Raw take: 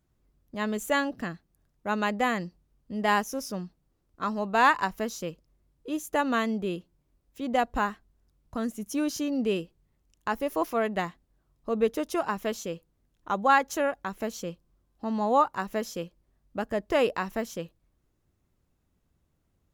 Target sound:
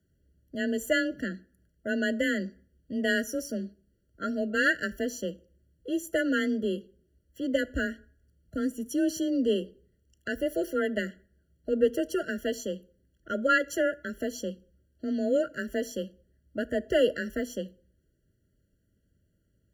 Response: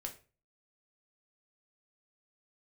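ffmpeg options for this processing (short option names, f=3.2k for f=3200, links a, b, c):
-filter_complex "[0:a]afreqshift=21,asplit=2[a][b];[1:a]atrim=start_sample=2205,asetrate=29988,aresample=44100[c];[b][c]afir=irnorm=-1:irlink=0,volume=-13dB[d];[a][d]amix=inputs=2:normalize=0,afftfilt=real='re*eq(mod(floor(b*sr/1024/680),2),0)':imag='im*eq(mod(floor(b*sr/1024/680),2),0)':win_size=1024:overlap=0.75"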